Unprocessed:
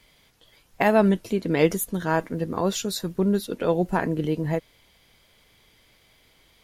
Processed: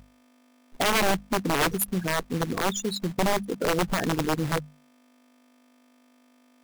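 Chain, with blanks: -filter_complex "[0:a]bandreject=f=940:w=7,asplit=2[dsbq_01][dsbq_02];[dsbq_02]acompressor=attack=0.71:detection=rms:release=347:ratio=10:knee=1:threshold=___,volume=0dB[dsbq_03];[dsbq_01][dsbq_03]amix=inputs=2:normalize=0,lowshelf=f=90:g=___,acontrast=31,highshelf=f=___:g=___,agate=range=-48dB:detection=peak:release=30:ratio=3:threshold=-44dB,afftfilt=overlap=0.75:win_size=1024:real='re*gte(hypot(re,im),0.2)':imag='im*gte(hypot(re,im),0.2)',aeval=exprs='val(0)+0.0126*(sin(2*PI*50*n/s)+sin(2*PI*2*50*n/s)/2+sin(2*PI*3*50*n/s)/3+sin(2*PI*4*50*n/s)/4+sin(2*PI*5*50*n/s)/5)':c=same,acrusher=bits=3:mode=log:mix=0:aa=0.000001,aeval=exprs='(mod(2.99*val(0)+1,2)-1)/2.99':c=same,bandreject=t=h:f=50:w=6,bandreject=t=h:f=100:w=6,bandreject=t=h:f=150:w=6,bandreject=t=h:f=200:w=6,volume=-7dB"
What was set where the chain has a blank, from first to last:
-32dB, 7, 9400, 6.5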